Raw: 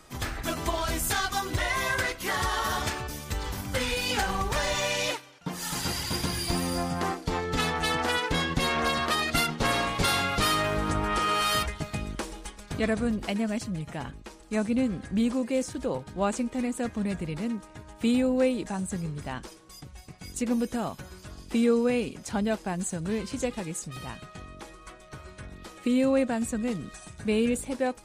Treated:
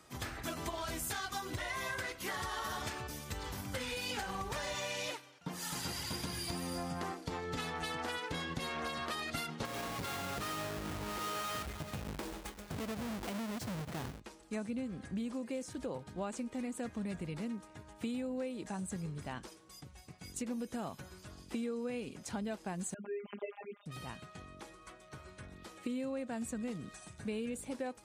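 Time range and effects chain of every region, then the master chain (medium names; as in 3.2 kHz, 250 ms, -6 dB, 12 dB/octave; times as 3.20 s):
9.65–14.20 s: square wave that keeps the level + compression 12:1, threshold -29 dBFS
22.94–23.86 s: formants replaced by sine waves + robot voice 203 Hz
whole clip: high-pass 67 Hz; compression, threshold -29 dBFS; trim -6.5 dB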